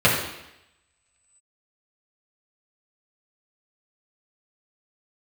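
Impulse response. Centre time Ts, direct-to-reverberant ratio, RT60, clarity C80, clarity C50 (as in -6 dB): 44 ms, -7.0 dB, 0.85 s, 6.0 dB, 3.5 dB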